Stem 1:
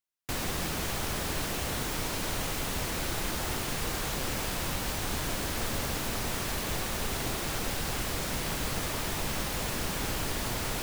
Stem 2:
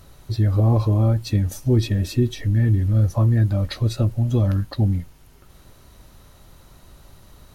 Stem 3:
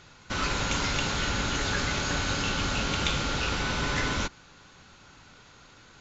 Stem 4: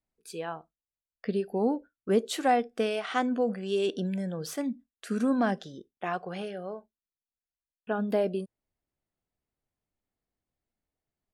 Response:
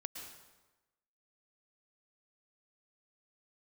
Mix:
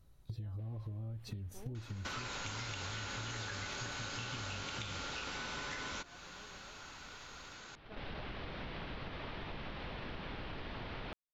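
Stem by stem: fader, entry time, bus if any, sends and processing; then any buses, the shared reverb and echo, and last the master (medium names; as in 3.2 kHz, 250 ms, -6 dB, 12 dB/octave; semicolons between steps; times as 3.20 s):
-6.0 dB, 0.30 s, bus A, no send, inverse Chebyshev low-pass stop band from 7 kHz, stop band 40 dB; auto duck -19 dB, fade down 1.05 s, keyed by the second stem
-13.5 dB, 0.00 s, bus A, no send, bass shelf 200 Hz +9 dB
+2.5 dB, 1.75 s, no bus, send -16.5 dB, bass shelf 270 Hz -10 dB; compression, threshold -30 dBFS, peak gain reduction 7 dB
-14.0 dB, 0.00 s, no bus, no send, four-pole ladder low-pass 3.9 kHz, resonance 80%
bus A: 0.0 dB, gate -43 dBFS, range -10 dB; compression, threshold -33 dBFS, peak gain reduction 12 dB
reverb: on, RT60 1.1 s, pre-delay 103 ms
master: compression 6:1, threshold -40 dBFS, peak gain reduction 14.5 dB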